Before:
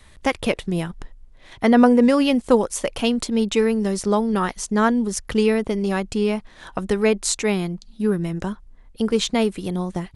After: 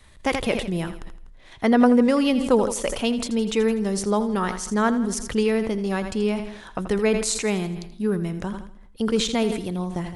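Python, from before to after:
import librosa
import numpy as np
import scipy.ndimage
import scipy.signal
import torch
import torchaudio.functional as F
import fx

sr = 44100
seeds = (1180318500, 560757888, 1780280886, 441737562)

y = fx.echo_feedback(x, sr, ms=82, feedback_pct=49, wet_db=-13.5)
y = fx.sustainer(y, sr, db_per_s=69.0)
y = y * 10.0 ** (-3.0 / 20.0)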